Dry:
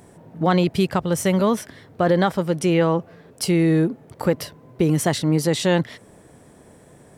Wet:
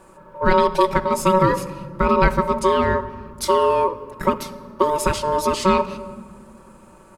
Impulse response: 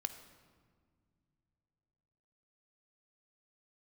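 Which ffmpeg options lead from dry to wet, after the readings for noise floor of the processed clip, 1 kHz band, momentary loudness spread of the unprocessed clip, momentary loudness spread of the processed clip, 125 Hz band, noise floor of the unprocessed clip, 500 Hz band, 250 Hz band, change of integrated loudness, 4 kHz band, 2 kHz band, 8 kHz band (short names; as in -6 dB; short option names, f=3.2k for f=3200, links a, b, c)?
-48 dBFS, +9.0 dB, 8 LU, 12 LU, -5.5 dB, -50 dBFS, +2.5 dB, -4.5 dB, +1.0 dB, -1.0 dB, +3.0 dB, -1.5 dB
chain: -filter_complex "[0:a]aecho=1:1:5.2:0.78,aeval=exprs='val(0)*sin(2*PI*750*n/s)':c=same,asplit=2[a][b];[1:a]atrim=start_sample=2205,lowshelf=f=370:g=10[c];[b][c]afir=irnorm=-1:irlink=0,volume=4.5dB[d];[a][d]amix=inputs=2:normalize=0,volume=-8.5dB"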